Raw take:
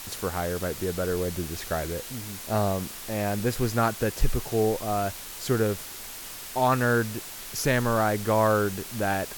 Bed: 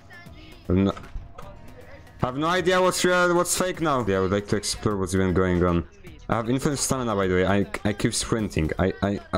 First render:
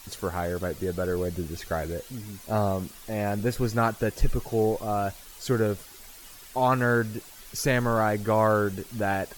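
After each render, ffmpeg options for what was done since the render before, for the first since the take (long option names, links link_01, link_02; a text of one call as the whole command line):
ffmpeg -i in.wav -af "afftdn=noise_reduction=10:noise_floor=-40" out.wav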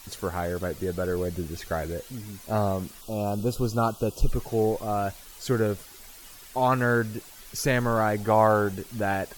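ffmpeg -i in.wav -filter_complex "[0:a]asettb=1/sr,asplit=3[link_01][link_02][link_03];[link_01]atrim=end=3.014[link_04];[link_02]atrim=start=3.01:end=4.32,asetpts=PTS-STARTPTS,afade=type=in:duration=0.004:curve=qsin,afade=type=out:start_time=1.306:duration=0.004:curve=qsin,asuperstop=centerf=1900:order=8:qfactor=1.5[link_05];[link_03]atrim=start=4.316[link_06];[link_04][link_05]acrossfade=duration=0.004:curve1=hsin:curve2=qsin[link_07];[link_07][link_06]acrossfade=duration=0.004:curve1=qsin:curve2=hsin,asettb=1/sr,asplit=3[link_08][link_09][link_10];[link_08]atrim=end=8.174[link_11];[link_09]atrim=start=8.17:end=8.75,asetpts=PTS-STARTPTS,afade=type=in:duration=0.004:curve=qsin,afade=type=out:start_time=0.576:duration=0.004:curve=qsin,equalizer=frequency=790:width_type=o:width=0.35:gain=9.5[link_12];[link_10]atrim=start=8.746[link_13];[link_11][link_12]acrossfade=duration=0.004:curve1=hsin:curve2=qsin[link_14];[link_14][link_13]acrossfade=duration=0.004:curve1=qsin:curve2=hsin" out.wav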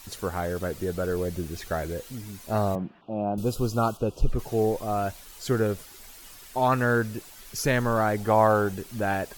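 ffmpeg -i in.wav -filter_complex "[0:a]asettb=1/sr,asplit=3[link_01][link_02][link_03];[link_01]atrim=end=0.514[link_04];[link_02]atrim=start=0.51:end=2.14,asetpts=PTS-STARTPTS,afade=type=in:duration=0.004:curve=qsin,afade=type=out:start_time=1.626:duration=0.004:curve=qsin,acrusher=bits=7:mix=0:aa=0.5[link_05];[link_03]atrim=start=2.136[link_06];[link_04][link_05]acrossfade=duration=0.004:curve1=hsin:curve2=qsin[link_07];[link_07][link_06]acrossfade=duration=0.004:curve1=qsin:curve2=hsin,asettb=1/sr,asplit=3[link_08][link_09][link_10];[link_08]atrim=end=2.754[link_11];[link_09]atrim=start=2.75:end=3.38,asetpts=PTS-STARTPTS,afade=type=in:duration=0.004:curve=qsin,afade=type=out:start_time=0.626:duration=0.004:curve=qsin,highpass=140,equalizer=frequency=170:width_type=q:width=4:gain=6,equalizer=frequency=310:width_type=q:width=4:gain=3,equalizer=frequency=450:width_type=q:width=4:gain=-5,equalizer=frequency=730:width_type=q:width=4:gain=3,equalizer=frequency=1200:width_type=q:width=4:gain=-6,equalizer=frequency=2100:width_type=q:width=4:gain=-7,lowpass=frequency=2300:width=0.5412,lowpass=frequency=2300:width=1.3066[link_12];[link_10]atrim=start=3.376[link_13];[link_11][link_12]acrossfade=duration=0.004:curve1=hsin:curve2=qsin[link_14];[link_14][link_13]acrossfade=duration=0.004:curve1=qsin:curve2=hsin,asettb=1/sr,asplit=3[link_15][link_16][link_17];[link_15]atrim=end=3.974[link_18];[link_16]atrim=start=3.97:end=4.39,asetpts=PTS-STARTPTS,afade=type=in:duration=0.004:curve=qsin,afade=type=out:start_time=0.416:duration=0.004:curve=qsin,lowpass=frequency=2600:poles=1[link_19];[link_17]atrim=start=4.386[link_20];[link_18][link_19]acrossfade=duration=0.004:curve1=hsin:curve2=qsin[link_21];[link_21][link_20]acrossfade=duration=0.004:curve1=qsin:curve2=hsin" out.wav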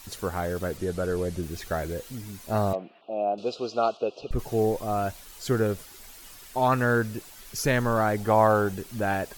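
ffmpeg -i in.wav -filter_complex "[0:a]asplit=3[link_01][link_02][link_03];[link_01]afade=type=out:start_time=0.77:duration=0.02[link_04];[link_02]lowpass=frequency=12000:width=0.5412,lowpass=frequency=12000:width=1.3066,afade=type=in:start_time=0.77:duration=0.02,afade=type=out:start_time=1.41:duration=0.02[link_05];[link_03]afade=type=in:start_time=1.41:duration=0.02[link_06];[link_04][link_05][link_06]amix=inputs=3:normalize=0,asettb=1/sr,asplit=3[link_07][link_08][link_09];[link_07]atrim=end=2.734[link_10];[link_08]atrim=start=2.73:end=4.31,asetpts=PTS-STARTPTS,afade=type=in:duration=0.004:curve=qsin,afade=type=out:start_time=1.576:duration=0.004:curve=qsin,highpass=400,equalizer=frequency=440:width_type=q:width=4:gain=3,equalizer=frequency=660:width_type=q:width=4:gain=7,equalizer=frequency=950:width_type=q:width=4:gain=-6,equalizer=frequency=1600:width_type=q:width=4:gain=-6,equalizer=frequency=2600:width_type=q:width=4:gain=6,equalizer=frequency=4100:width_type=q:width=4:gain=5,lowpass=frequency=5300:width=0.5412,lowpass=frequency=5300:width=1.3066[link_11];[link_09]atrim=start=4.306[link_12];[link_10][link_11]acrossfade=duration=0.004:curve1=hsin:curve2=qsin[link_13];[link_13][link_12]acrossfade=duration=0.004:curve1=qsin:curve2=hsin" out.wav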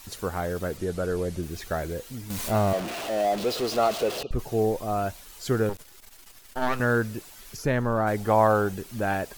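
ffmpeg -i in.wav -filter_complex "[0:a]asettb=1/sr,asplit=3[link_01][link_02][link_03];[link_01]atrim=end=2.304[link_04];[link_02]atrim=start=2.3:end=4.23,asetpts=PTS-STARTPTS,afade=type=in:duration=0.004:curve=qsin,afade=type=out:start_time=1.926:duration=0.004:curve=qsin,aeval=exprs='val(0)+0.5*0.0398*sgn(val(0))':channel_layout=same[link_05];[link_03]atrim=start=4.226[link_06];[link_04][link_05]acrossfade=duration=0.004:curve1=hsin:curve2=qsin[link_07];[link_07][link_06]acrossfade=duration=0.004:curve1=qsin:curve2=hsin,asettb=1/sr,asplit=3[link_08][link_09][link_10];[link_08]atrim=end=5.694[link_11];[link_09]atrim=start=5.69:end=6.8,asetpts=PTS-STARTPTS,afade=type=in:duration=0.004:curve=qsin,afade=type=out:start_time=1.106:duration=0.004:curve=qsin,aeval=exprs='max(val(0),0)':channel_layout=same[link_12];[link_10]atrim=start=6.796[link_13];[link_11][link_12]acrossfade=duration=0.004:curve1=hsin:curve2=qsin[link_14];[link_14][link_13]acrossfade=duration=0.004:curve1=qsin:curve2=hsin,asplit=3[link_15][link_16][link_17];[link_15]afade=type=out:start_time=7.55:duration=0.02[link_18];[link_16]highshelf=frequency=2200:gain=-10.5,afade=type=in:start_time=7.55:duration=0.02,afade=type=out:start_time=8.06:duration=0.02[link_19];[link_17]afade=type=in:start_time=8.06:duration=0.02[link_20];[link_18][link_19][link_20]amix=inputs=3:normalize=0" out.wav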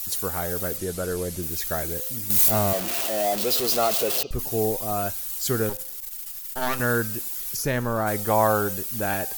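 ffmpeg -i in.wav -af "aemphasis=mode=production:type=75fm,bandreject=frequency=259.4:width_type=h:width=4,bandreject=frequency=518.8:width_type=h:width=4,bandreject=frequency=778.2:width_type=h:width=4,bandreject=frequency=1037.6:width_type=h:width=4,bandreject=frequency=1297:width_type=h:width=4,bandreject=frequency=1556.4:width_type=h:width=4,bandreject=frequency=1815.8:width_type=h:width=4,bandreject=frequency=2075.2:width_type=h:width=4,bandreject=frequency=2334.6:width_type=h:width=4,bandreject=frequency=2594:width_type=h:width=4,bandreject=frequency=2853.4:width_type=h:width=4,bandreject=frequency=3112.8:width_type=h:width=4,bandreject=frequency=3372.2:width_type=h:width=4,bandreject=frequency=3631.6:width_type=h:width=4,bandreject=frequency=3891:width_type=h:width=4,bandreject=frequency=4150.4:width_type=h:width=4,bandreject=frequency=4409.8:width_type=h:width=4,bandreject=frequency=4669.2:width_type=h:width=4,bandreject=frequency=4928.6:width_type=h:width=4,bandreject=frequency=5188:width_type=h:width=4,bandreject=frequency=5447.4:width_type=h:width=4,bandreject=frequency=5706.8:width_type=h:width=4,bandreject=frequency=5966.2:width_type=h:width=4,bandreject=frequency=6225.6:width_type=h:width=4,bandreject=frequency=6485:width_type=h:width=4" out.wav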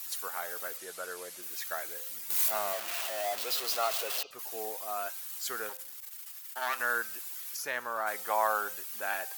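ffmpeg -i in.wav -af "highpass=1100,highshelf=frequency=2900:gain=-10" out.wav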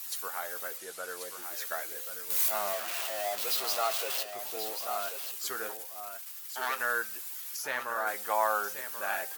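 ffmpeg -i in.wav -filter_complex "[0:a]asplit=2[link_01][link_02];[link_02]adelay=15,volume=-11dB[link_03];[link_01][link_03]amix=inputs=2:normalize=0,asplit=2[link_04][link_05];[link_05]aecho=0:1:1085:0.376[link_06];[link_04][link_06]amix=inputs=2:normalize=0" out.wav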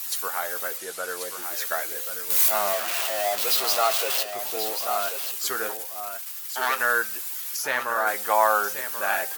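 ffmpeg -i in.wav -af "volume=8dB" out.wav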